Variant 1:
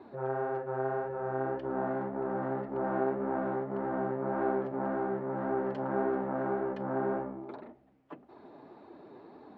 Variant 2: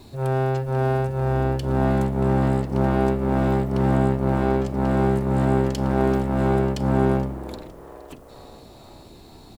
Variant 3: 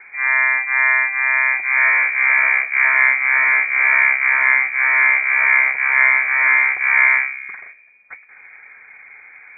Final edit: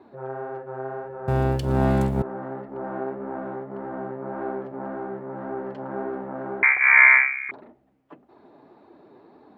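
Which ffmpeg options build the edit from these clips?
-filter_complex "[0:a]asplit=3[a][b][c];[a]atrim=end=1.282[d];[1:a]atrim=start=1.278:end=2.222[e];[b]atrim=start=2.218:end=6.632[f];[2:a]atrim=start=6.628:end=7.512[g];[c]atrim=start=7.508[h];[d][e]acrossfade=d=0.004:c1=hsin:c2=hsin[i];[i][f]acrossfade=d=0.004:c1=hsin:c2=hsin[j];[j][g]acrossfade=d=0.004:c1=hsin:c2=hsin[k];[k][h]acrossfade=d=0.004:c1=hsin:c2=hsin"

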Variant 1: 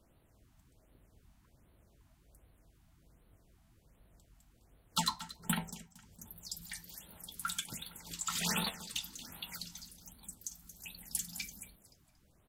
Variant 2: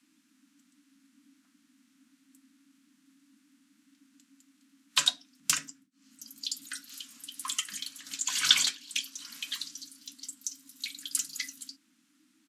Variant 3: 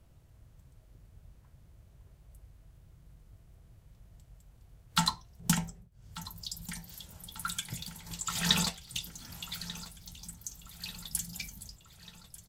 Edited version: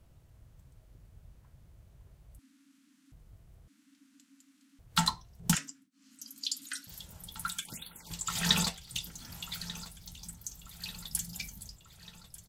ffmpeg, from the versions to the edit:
-filter_complex "[1:a]asplit=3[a][b][c];[2:a]asplit=5[d][e][f][g][h];[d]atrim=end=2.392[i];[a]atrim=start=2.388:end=3.122[j];[e]atrim=start=3.118:end=3.682[k];[b]atrim=start=3.678:end=4.792[l];[f]atrim=start=4.788:end=5.552[m];[c]atrim=start=5.548:end=6.872[n];[g]atrim=start=6.868:end=7.482[o];[0:a]atrim=start=7.478:end=8.102[p];[h]atrim=start=8.098[q];[i][j]acrossfade=d=0.004:c1=hsin:c2=hsin[r];[r][k]acrossfade=d=0.004:c1=hsin:c2=hsin[s];[s][l]acrossfade=d=0.004:c1=hsin:c2=hsin[t];[t][m]acrossfade=d=0.004:c1=hsin:c2=hsin[u];[u][n]acrossfade=d=0.004:c1=hsin:c2=hsin[v];[v][o]acrossfade=d=0.004:c1=hsin:c2=hsin[w];[w][p]acrossfade=d=0.004:c1=hsin:c2=hsin[x];[x][q]acrossfade=d=0.004:c1=hsin:c2=hsin"

